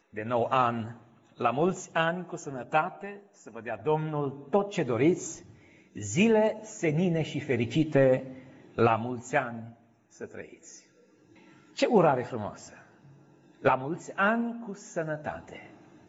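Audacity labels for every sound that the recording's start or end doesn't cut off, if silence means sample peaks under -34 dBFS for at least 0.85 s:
11.780000	12.500000	sound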